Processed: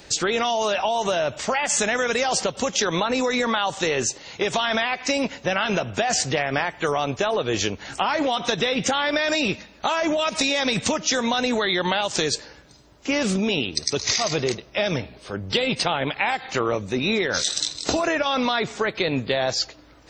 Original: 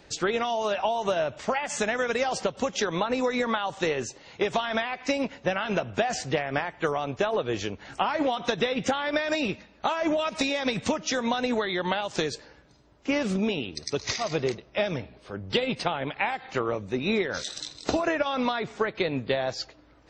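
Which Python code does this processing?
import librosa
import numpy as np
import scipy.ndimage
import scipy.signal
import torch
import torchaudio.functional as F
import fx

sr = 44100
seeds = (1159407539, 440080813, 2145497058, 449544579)

p1 = fx.high_shelf(x, sr, hz=4000.0, db=11.0)
p2 = fx.over_compress(p1, sr, threshold_db=-28.0, ratio=-1.0)
p3 = p1 + F.gain(torch.from_numpy(p2), -1.0).numpy()
y = F.gain(torch.from_numpy(p3), -1.0).numpy()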